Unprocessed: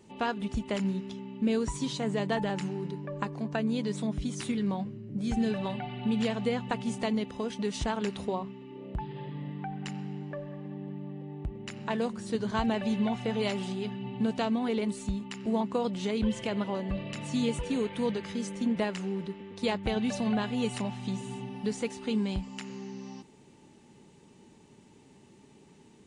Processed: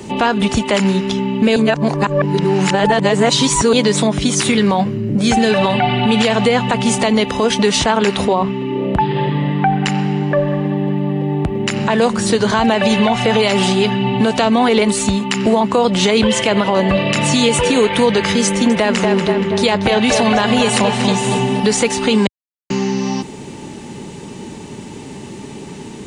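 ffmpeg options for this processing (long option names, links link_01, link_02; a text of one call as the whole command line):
ffmpeg -i in.wav -filter_complex "[0:a]asettb=1/sr,asplit=3[link_01][link_02][link_03];[link_01]atrim=end=7.694[link_04];[link_02]atrim=start=7.69:end=10.48,asetpts=PTS-STARTPTS,afade=type=in:duration=0.004:curve=qsin,afade=type=out:start_time=2.786:duration=0.004:curve=qsin,bass=frequency=250:gain=0,treble=frequency=4000:gain=-3[link_05];[link_03]atrim=start=10.476[link_06];[link_04][link_05]acrossfade=duration=0.004:curve1=hsin:curve2=qsin[link_07];[link_07][link_06]acrossfade=duration=0.004:curve1=qsin:curve2=hsin,asettb=1/sr,asplit=3[link_08][link_09][link_10];[link_08]atrim=end=18.464[link_11];[link_09]atrim=start=18.46:end=21.6,asetpts=PTS-STARTPTS,afade=type=in:duration=0.004:curve=qsin,afade=type=out:start_time=3.136:duration=0.004:curve=qsin,asplit=2[link_12][link_13];[link_13]adelay=237,lowpass=frequency=3900:poles=1,volume=-8.5dB,asplit=2[link_14][link_15];[link_15]adelay=237,lowpass=frequency=3900:poles=1,volume=0.52,asplit=2[link_16][link_17];[link_17]adelay=237,lowpass=frequency=3900:poles=1,volume=0.52,asplit=2[link_18][link_19];[link_19]adelay=237,lowpass=frequency=3900:poles=1,volume=0.52,asplit=2[link_20][link_21];[link_21]adelay=237,lowpass=frequency=3900:poles=1,volume=0.52,asplit=2[link_22][link_23];[link_23]adelay=237,lowpass=frequency=3900:poles=1,volume=0.52[link_24];[link_12][link_14][link_16][link_18][link_20][link_22][link_24]amix=inputs=7:normalize=0,atrim=end_sample=138474[link_25];[link_10]atrim=start=21.596[link_26];[link_11][link_25]acrossfade=duration=0.004:curve1=hsin:curve2=qsin[link_27];[link_27][link_26]acrossfade=duration=0.004:curve1=qsin:curve2=hsin,asplit=5[link_28][link_29][link_30][link_31][link_32];[link_28]atrim=end=1.562[link_33];[link_29]atrim=start=1.558:end=3.732,asetpts=PTS-STARTPTS,areverse[link_34];[link_30]atrim=start=3.728:end=22.27,asetpts=PTS-STARTPTS,afade=type=out:start_time=18.538:duration=0.004:curve=hsin[link_35];[link_31]atrim=start=22.27:end=22.7,asetpts=PTS-STARTPTS,volume=0[link_36];[link_32]atrim=start=22.7,asetpts=PTS-STARTPTS,afade=type=in:duration=0.004:curve=hsin[link_37];[link_33][link_34]acrossfade=duration=0.004:curve1=hsin:curve2=hsin[link_38];[link_35][link_36][link_37]concat=n=3:v=0:a=1[link_39];[link_38][link_39]acrossfade=duration=0.004:curve1=hsin:curve2=hsin,acrossover=split=100|440[link_40][link_41][link_42];[link_40]acompressor=threshold=-57dB:ratio=4[link_43];[link_41]acompressor=threshold=-43dB:ratio=4[link_44];[link_42]acompressor=threshold=-33dB:ratio=4[link_45];[link_43][link_44][link_45]amix=inputs=3:normalize=0,alimiter=level_in=29dB:limit=-1dB:release=50:level=0:latency=1,volume=-3.5dB" out.wav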